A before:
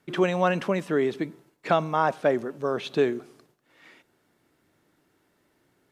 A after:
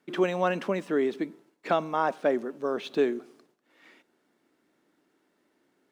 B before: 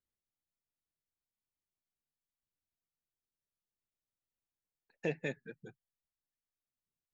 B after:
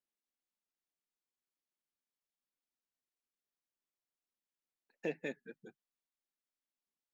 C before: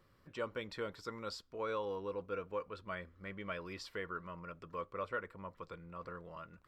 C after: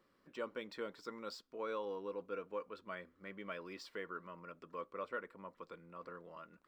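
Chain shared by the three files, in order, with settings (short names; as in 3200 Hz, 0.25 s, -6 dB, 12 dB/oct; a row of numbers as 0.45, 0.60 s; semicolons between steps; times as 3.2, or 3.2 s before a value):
median filter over 3 samples; resonant low shelf 160 Hz -12 dB, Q 1.5; gain -3.5 dB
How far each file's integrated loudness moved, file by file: -2.5, -3.0, -3.0 LU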